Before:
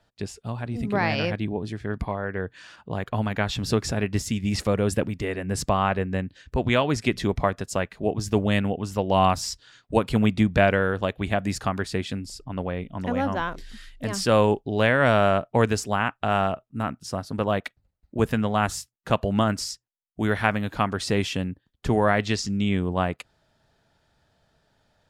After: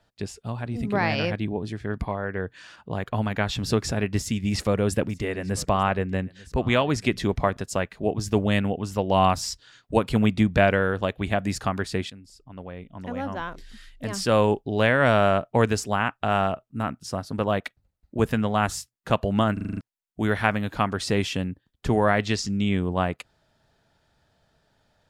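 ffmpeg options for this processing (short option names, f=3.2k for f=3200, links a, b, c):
-filter_complex "[0:a]asettb=1/sr,asplit=3[a][b][c];[a]atrim=end=4.204[d];[b]atrim=start=4.2:end=7.57,asetpts=PTS-STARTPTS,afade=t=in:d=0.004:c=qsin,afade=t=out:st=3.366:d=0.004:c=qsin,aecho=1:1:893:0.0794,atrim=end_sample=148617[e];[c]atrim=start=7.566[f];[d][e]acrossfade=d=0.004:c1=hsin:c2=qsin[g];[g][f]acrossfade=d=0.004:c1=qsin:c2=hsin,asplit=9[h][i][j][k][l][m][n][o][p];[h]atrim=end=12.1,asetpts=PTS-STARTPTS,afade=t=out:st=12.096:d=0.004:c=hsin:silence=0.16788[q];[i]atrim=start=12.1:end=19.572,asetpts=PTS-STARTPTS,afade=t=in:d=2.6:silence=0.16788[r];[j]atrim=start=19.528:end=19.572[s];[k]atrim=start=19.528:end=19.572[t];[l]atrim=start=19.528:end=19.572[u];[m]atrim=start=19.528:end=19.572[v];[n]atrim=start=19.528:end=19.572[w];[o]atrim=start=19.528:end=19.572[x];[p]atrim=start=19.808[y];[q][r]concat=n=2:v=0:a=1[z];[z][s]acrossfade=d=0.004:c1=hsin:c2=hsin[aa];[aa][t]acrossfade=d=0.004:c1=hsin:c2=hsin[ab];[ab][u]acrossfade=d=0.004:c1=hsin:c2=hsin[ac];[ac][v]acrossfade=d=0.004:c1=hsin:c2=hsin[ad];[ad][w]acrossfade=d=0.004:c1=hsin:c2=hsin[ae];[ae][x]acrossfade=d=0.004:c1=hsin:c2=hsin[af];[af][y]acrossfade=d=0.004:c1=hsin:c2=hsin"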